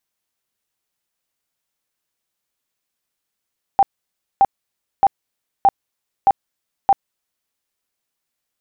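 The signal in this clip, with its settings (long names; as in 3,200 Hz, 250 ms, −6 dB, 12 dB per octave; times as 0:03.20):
tone bursts 789 Hz, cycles 30, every 0.62 s, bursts 6, −8 dBFS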